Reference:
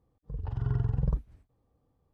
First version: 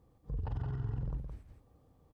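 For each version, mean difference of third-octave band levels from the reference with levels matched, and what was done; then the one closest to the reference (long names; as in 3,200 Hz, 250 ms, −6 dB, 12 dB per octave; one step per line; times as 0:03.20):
4.5 dB: downward compressor, threshold −33 dBFS, peak gain reduction 11 dB
brickwall limiter −36 dBFS, peak gain reduction 10 dB
single-tap delay 167 ms −5.5 dB
level +6 dB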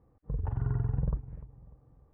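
3.0 dB: low-pass filter 2,000 Hz 24 dB per octave
downward compressor 2.5 to 1, threshold −37 dBFS, peak gain reduction 10.5 dB
on a send: bucket-brigade delay 297 ms, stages 2,048, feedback 37%, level −16 dB
on the sum: level +7 dB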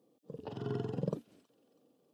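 8.0 dB: high-pass filter 220 Hz 24 dB per octave
flat-topped bell 1,300 Hz −10 dB
on a send: delay with a high-pass on its return 323 ms, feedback 45%, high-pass 2,100 Hz, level −16.5 dB
on the sum: level +8 dB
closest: second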